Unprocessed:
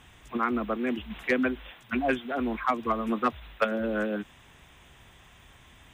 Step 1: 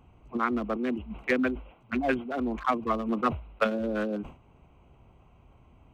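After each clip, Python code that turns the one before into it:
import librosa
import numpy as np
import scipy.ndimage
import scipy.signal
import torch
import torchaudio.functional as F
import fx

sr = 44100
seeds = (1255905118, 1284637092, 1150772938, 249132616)

y = fx.wiener(x, sr, points=25)
y = fx.sustainer(y, sr, db_per_s=140.0)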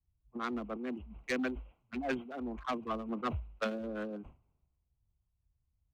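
y = 10.0 ** (-21.5 / 20.0) * np.tanh(x / 10.0 ** (-21.5 / 20.0))
y = fx.band_widen(y, sr, depth_pct=100)
y = F.gain(torch.from_numpy(y), -7.5).numpy()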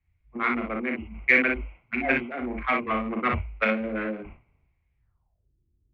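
y = fx.filter_sweep_lowpass(x, sr, from_hz=2200.0, to_hz=350.0, start_s=4.97, end_s=5.5, q=7.4)
y = fx.room_early_taps(y, sr, ms=(37, 59), db=(-5.5, -5.0))
y = F.gain(torch.from_numpy(y), 6.0).numpy()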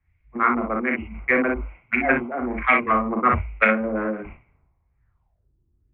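y = fx.filter_lfo_lowpass(x, sr, shape='sine', hz=1.2, low_hz=990.0, high_hz=2300.0, q=1.8)
y = F.gain(torch.from_numpy(y), 4.0).numpy()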